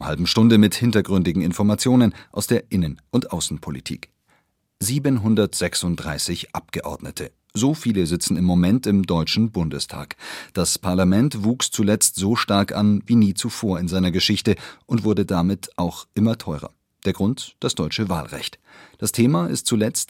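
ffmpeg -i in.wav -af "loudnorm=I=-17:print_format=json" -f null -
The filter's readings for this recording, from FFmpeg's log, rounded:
"input_i" : "-20.8",
"input_tp" : "-2.0",
"input_lra" : "4.5",
"input_thresh" : "-31.2",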